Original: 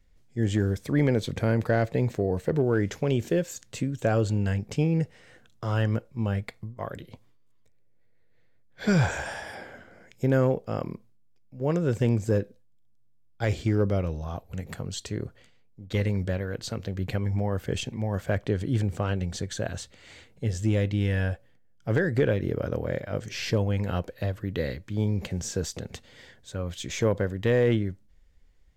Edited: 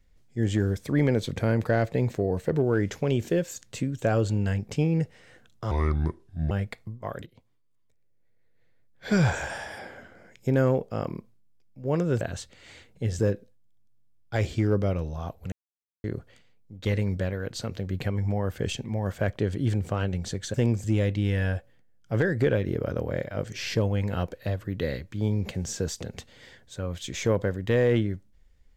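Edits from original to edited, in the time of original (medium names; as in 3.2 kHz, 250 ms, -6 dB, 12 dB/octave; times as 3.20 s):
5.71–6.27 s: speed 70%
7.02–8.83 s: fade in, from -12.5 dB
11.97–12.27 s: swap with 19.62–20.60 s
14.60–15.12 s: mute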